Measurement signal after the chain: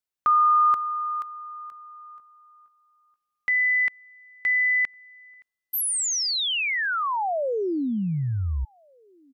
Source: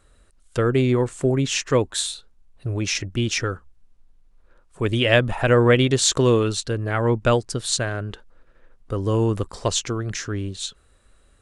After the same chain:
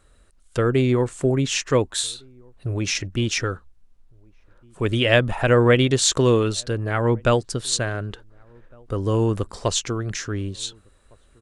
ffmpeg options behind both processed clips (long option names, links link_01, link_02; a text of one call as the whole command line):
ffmpeg -i in.wav -filter_complex "[0:a]asplit=2[link_01][link_02];[link_02]adelay=1458,volume=-30dB,highshelf=frequency=4000:gain=-32.8[link_03];[link_01][link_03]amix=inputs=2:normalize=0" out.wav